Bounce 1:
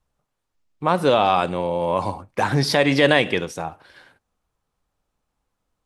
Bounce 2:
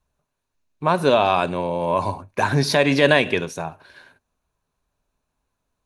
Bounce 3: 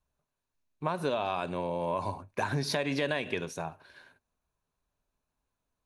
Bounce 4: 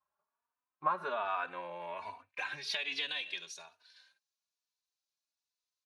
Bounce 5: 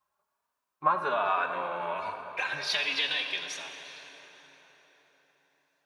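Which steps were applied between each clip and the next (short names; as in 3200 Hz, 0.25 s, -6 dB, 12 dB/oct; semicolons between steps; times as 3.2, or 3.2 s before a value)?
ripple EQ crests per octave 1.5, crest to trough 6 dB
compressor 6:1, threshold -19 dBFS, peak gain reduction 9 dB; gain -7.5 dB
band-pass sweep 1100 Hz -> 4900 Hz, 0.75–3.79; endless flanger 3.3 ms +1.2 Hz; gain +8 dB
plate-style reverb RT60 4.8 s, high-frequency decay 0.65×, DRR 5.5 dB; gain +6.5 dB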